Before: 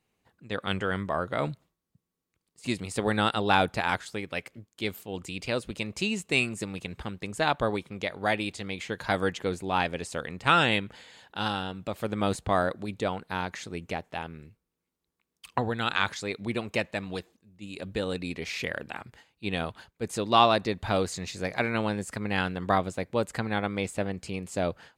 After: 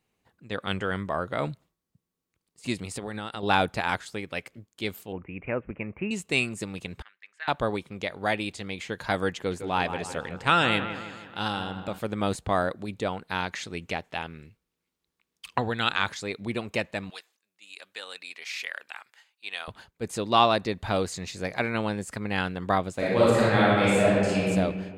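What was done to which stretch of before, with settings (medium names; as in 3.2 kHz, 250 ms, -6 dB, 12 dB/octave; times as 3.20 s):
2.93–3.43 s: compression 12:1, threshold -30 dBFS
5.12–6.11 s: steep low-pass 2.5 kHz 72 dB/octave
7.02–7.48 s: ladder band-pass 2 kHz, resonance 55%
9.35–11.99 s: feedback echo behind a low-pass 159 ms, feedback 52%, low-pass 2.6 kHz, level -9.5 dB
13.28–15.91 s: peaking EQ 3.1 kHz +5.5 dB 2.3 oct
17.10–19.68 s: high-pass 1.2 kHz
22.95–24.48 s: reverb throw, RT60 1.8 s, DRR -9 dB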